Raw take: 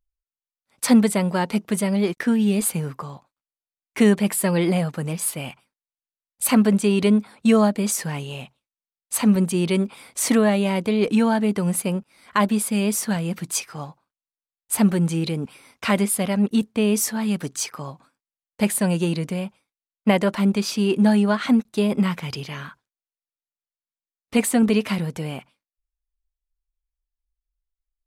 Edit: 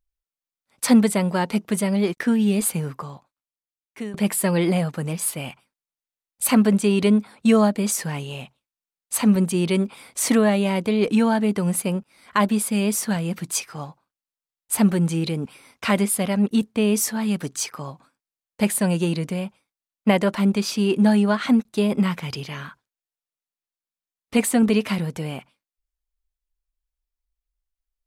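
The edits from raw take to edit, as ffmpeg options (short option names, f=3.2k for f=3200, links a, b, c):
-filter_complex "[0:a]asplit=2[a][b];[a]atrim=end=4.14,asetpts=PTS-STARTPTS,afade=t=out:st=2.99:d=1.15:silence=0.0944061[c];[b]atrim=start=4.14,asetpts=PTS-STARTPTS,afade=t=in:d=0.004:c=hsin:silence=0.0944061[d];[c][d]concat=n=2:v=0:a=1"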